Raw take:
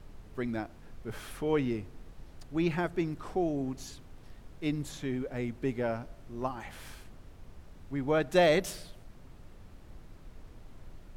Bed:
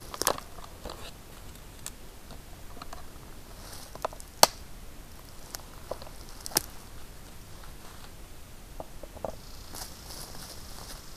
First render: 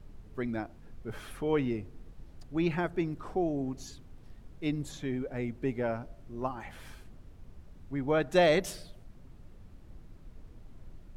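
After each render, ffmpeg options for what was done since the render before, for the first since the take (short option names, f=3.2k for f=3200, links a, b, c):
-af "afftdn=nr=6:nf=-52"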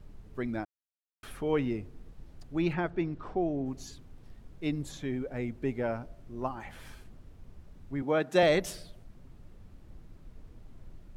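-filter_complex "[0:a]asettb=1/sr,asplit=3[a][b][c];[a]atrim=end=2.734[d];[b]atrim=start=2.73:end=3.66,asetpts=PTS-STARTPTS,afade=t=in:d=0.004:c=qsin,afade=t=out:st=0.926:d=0.004:c=qsin,lowpass=4.4k[e];[c]atrim=start=3.656[f];[d][e]acrossfade=d=0.004:c1=hsin:c2=qsin[g];[g][f]acrossfade=d=0.004:c1=qsin:c2=hsin,asettb=1/sr,asplit=3[h][i][j];[h]atrim=end=8.024[k];[i]atrim=start=8.02:end=8.43,asetpts=PTS-STARTPTS,afade=t=in:d=0.004:c=qsin,afade=t=out:st=0.406:d=0.004:c=qsin,highpass=f=150:w=0.5412,highpass=f=150:w=1.3066[l];[j]atrim=start=8.426[m];[k][l]acrossfade=d=0.004:c1=hsin:c2=qsin[n];[n][m]acrossfade=d=0.004:c1=qsin:c2=hsin,asplit=3[o][p][q];[o]atrim=end=0.65,asetpts=PTS-STARTPTS,afade=t=out:st=0.646:d=0.004:c=hsin[r];[p]atrim=start=0.65:end=1.23,asetpts=PTS-STARTPTS,volume=0[s];[q]atrim=start=1.23,asetpts=PTS-STARTPTS,afade=t=in:d=0.004:c=hsin[t];[r][s][t]concat=n=3:v=0:a=1"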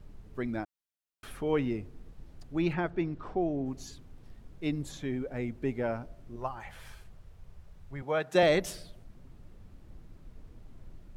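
-filter_complex "[0:a]asettb=1/sr,asplit=3[a][b][c];[a]atrim=end=6.364[d];[b]atrim=start=6.36:end=8.35,asetpts=PTS-STARTPTS,afade=t=in:d=0.004:c=qsin,afade=t=out:st=1.986:d=0.004:c=qsin,equalizer=f=270:w=1.8:g=-13[e];[c]atrim=start=8.346[f];[d][e]acrossfade=d=0.004:c1=hsin:c2=qsin[g];[g][f]acrossfade=d=0.004:c1=qsin:c2=hsin"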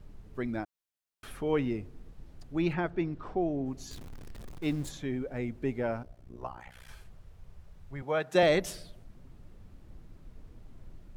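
-filter_complex "[0:a]asettb=1/sr,asplit=3[a][b][c];[a]atrim=end=3.914[d];[b]atrim=start=3.91:end=4.9,asetpts=PTS-STARTPTS,afade=t=in:d=0.004:c=qsin,afade=t=out:st=0.986:d=0.004:c=qsin,aeval=exprs='val(0)+0.5*0.00794*sgn(val(0))':c=same[e];[c]atrim=start=4.896[f];[d][e]acrossfade=d=0.004:c1=hsin:c2=qsin[g];[g][f]acrossfade=d=0.004:c1=qsin:c2=hsin,asettb=1/sr,asplit=3[h][i][j];[h]atrim=end=6.034[k];[i]atrim=start=6.03:end=6.89,asetpts=PTS-STARTPTS,afade=t=in:d=0.004:c=qsin,afade=t=out:st=0.856:d=0.004:c=qsin,tremolo=f=62:d=0.947[l];[j]atrim=start=6.886[m];[k][l]acrossfade=d=0.004:c1=hsin:c2=qsin[n];[n][m]acrossfade=d=0.004:c1=qsin:c2=hsin"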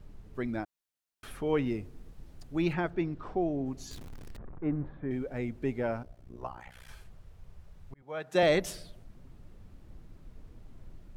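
-filter_complex "[0:a]asettb=1/sr,asplit=3[a][b][c];[a]atrim=end=1.664[d];[b]atrim=start=1.66:end=2.94,asetpts=PTS-STARTPTS,afade=t=in:d=0.004:c=qsin,afade=t=out:st=1.276:d=0.004:c=qsin,highshelf=f=6k:g=5.5[e];[c]atrim=start=2.936[f];[d][e]acrossfade=d=0.004:c1=hsin:c2=qsin[g];[g][f]acrossfade=d=0.004:c1=qsin:c2=hsin,asettb=1/sr,asplit=3[h][i][j];[h]atrim=end=4.374[k];[i]atrim=start=4.37:end=5.11,asetpts=PTS-STARTPTS,afade=t=in:d=0.004:c=qsin,afade=t=out:st=0.736:d=0.004:c=qsin,lowpass=f=1.6k:w=0.5412,lowpass=f=1.6k:w=1.3066[l];[j]atrim=start=5.106[m];[k][l]acrossfade=d=0.004:c1=hsin:c2=qsin[n];[n][m]acrossfade=d=0.004:c1=qsin:c2=hsin,asplit=2[o][p];[o]atrim=end=7.94,asetpts=PTS-STARTPTS,afade=t=out:st=7.936:d=0.004:c=hsin[q];[p]atrim=start=7.94,asetpts=PTS-STARTPTS,afade=t=in:d=0.55[r];[q][r]concat=n=2:v=0:a=1"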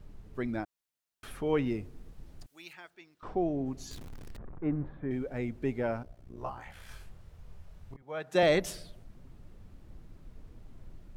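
-filter_complex "[0:a]asettb=1/sr,asplit=3[a][b][c];[a]atrim=end=2.464[d];[b]atrim=start=2.46:end=3.23,asetpts=PTS-STARTPTS,afade=t=in:d=0.004:c=qsin,afade=t=out:st=0.766:d=0.004:c=qsin,aderivative[e];[c]atrim=start=3.226[f];[d][e]acrossfade=d=0.004:c1=hsin:c2=qsin[g];[g][f]acrossfade=d=0.004:c1=qsin:c2=hsin,asettb=1/sr,asplit=3[h][i][j];[h]atrim=end=6.354[k];[i]atrim=start=6.35:end=7.97,asetpts=PTS-STARTPTS,afade=t=in:d=0.004:c=qsin,afade=t=out:st=1.616:d=0.004:c=qsin,asplit=2[l][m];[m]adelay=25,volume=-3dB[n];[l][n]amix=inputs=2:normalize=0,atrim=end_sample=71442[o];[j]atrim=start=7.966[p];[k][o]acrossfade=d=0.004:c1=hsin:c2=qsin[q];[q][p]acrossfade=d=0.004:c1=qsin:c2=hsin"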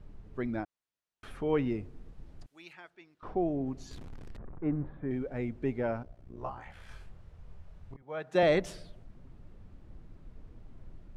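-af "lowpass=11k,highshelf=f=4.3k:g=-10"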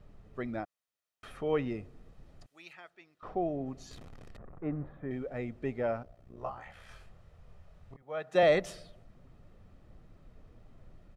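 -af "lowshelf=f=120:g=-9.5,aecho=1:1:1.6:0.32"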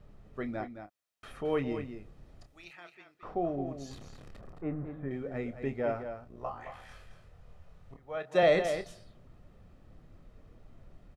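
-filter_complex "[0:a]asplit=2[a][b];[b]adelay=29,volume=-10.5dB[c];[a][c]amix=inputs=2:normalize=0,aecho=1:1:218:0.355"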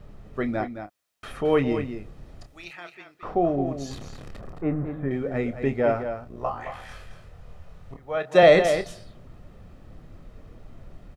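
-af "volume=9.5dB"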